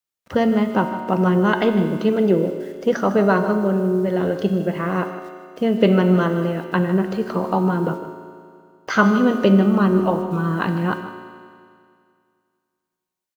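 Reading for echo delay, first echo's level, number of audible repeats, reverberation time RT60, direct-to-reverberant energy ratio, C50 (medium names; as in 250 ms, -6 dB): 154 ms, -13.5 dB, 1, 2.2 s, 5.5 dB, 6.5 dB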